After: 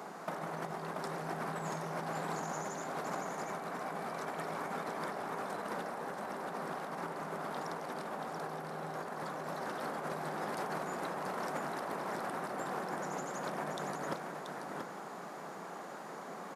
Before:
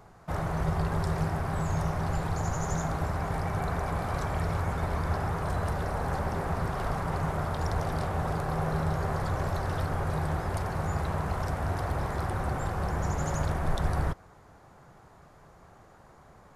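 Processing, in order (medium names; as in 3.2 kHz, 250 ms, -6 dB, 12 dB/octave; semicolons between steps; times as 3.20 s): steep high-pass 190 Hz 36 dB/octave; compressor with a negative ratio -40 dBFS, ratio -0.5; delay 682 ms -5 dB; trim +2 dB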